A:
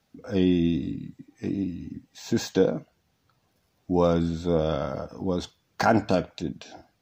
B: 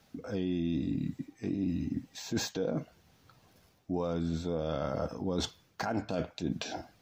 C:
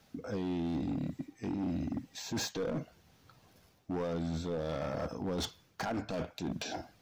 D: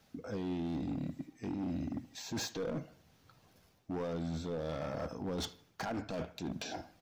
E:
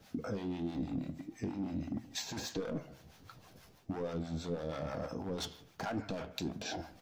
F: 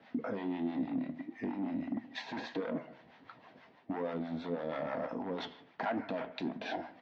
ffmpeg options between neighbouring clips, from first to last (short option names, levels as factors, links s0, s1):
-af "alimiter=limit=0.126:level=0:latency=1:release=301,areverse,acompressor=threshold=0.0158:ratio=6,areverse,volume=2.11"
-af "asoftclip=type=hard:threshold=0.0299"
-filter_complex "[0:a]asplit=2[s0][s1];[s1]adelay=77,lowpass=f=3400:p=1,volume=0.112,asplit=2[s2][s3];[s3]adelay=77,lowpass=f=3400:p=1,volume=0.46,asplit=2[s4][s5];[s5]adelay=77,lowpass=f=3400:p=1,volume=0.46,asplit=2[s6][s7];[s7]adelay=77,lowpass=f=3400:p=1,volume=0.46[s8];[s0][s2][s4][s6][s8]amix=inputs=5:normalize=0,volume=0.75"
-filter_complex "[0:a]acompressor=threshold=0.00708:ratio=6,acrossover=split=620[s0][s1];[s0]aeval=exprs='val(0)*(1-0.7/2+0.7/2*cos(2*PI*6.2*n/s))':c=same[s2];[s1]aeval=exprs='val(0)*(1-0.7/2-0.7/2*cos(2*PI*6.2*n/s))':c=same[s3];[s2][s3]amix=inputs=2:normalize=0,flanger=delay=8.5:depth=7.5:regen=71:speed=1.5:shape=triangular,volume=5.31"
-af "highpass=220,equalizer=f=250:t=q:w=4:g=7,equalizer=f=660:t=q:w=4:g=5,equalizer=f=950:t=q:w=4:g=7,equalizer=f=1900:t=q:w=4:g=9,lowpass=f=3600:w=0.5412,lowpass=f=3600:w=1.3066"